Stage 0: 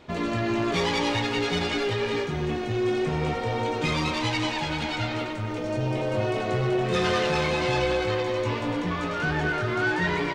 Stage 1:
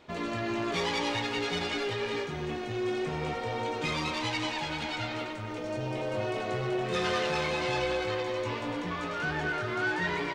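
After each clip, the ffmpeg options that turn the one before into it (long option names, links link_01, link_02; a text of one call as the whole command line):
ffmpeg -i in.wav -af "lowshelf=frequency=270:gain=-6,volume=-4dB" out.wav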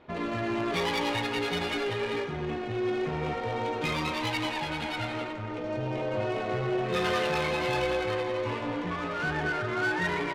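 ffmpeg -i in.wav -af "adynamicsmooth=sensitivity=6:basefreq=2600,volume=2dB" out.wav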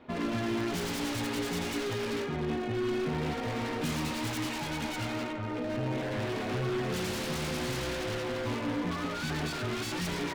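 ffmpeg -i in.wav -filter_complex "[0:a]equalizer=frequency=250:width_type=o:width=0.2:gain=12,acrossover=split=340[link_01][link_02];[link_02]aeval=exprs='0.0237*(abs(mod(val(0)/0.0237+3,4)-2)-1)':channel_layout=same[link_03];[link_01][link_03]amix=inputs=2:normalize=0" out.wav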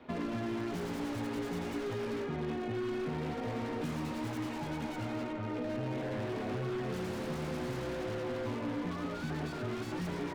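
ffmpeg -i in.wav -filter_complex "[0:a]acrossover=split=100|770|1900[link_01][link_02][link_03][link_04];[link_01]acompressor=threshold=-52dB:ratio=4[link_05];[link_02]acompressor=threshold=-34dB:ratio=4[link_06];[link_03]acompressor=threshold=-48dB:ratio=4[link_07];[link_04]acompressor=threshold=-54dB:ratio=4[link_08];[link_05][link_06][link_07][link_08]amix=inputs=4:normalize=0" out.wav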